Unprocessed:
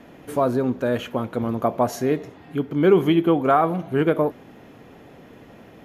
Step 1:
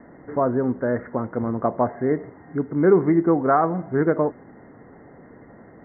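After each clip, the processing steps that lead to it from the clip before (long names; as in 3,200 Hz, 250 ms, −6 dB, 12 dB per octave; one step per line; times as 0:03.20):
Chebyshev low-pass filter 2,100 Hz, order 10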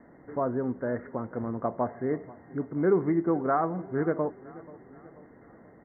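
repeating echo 484 ms, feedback 51%, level −20 dB
level −7.5 dB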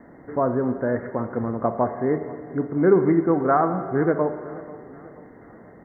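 convolution reverb RT60 2.0 s, pre-delay 40 ms, DRR 9.5 dB
level +6.5 dB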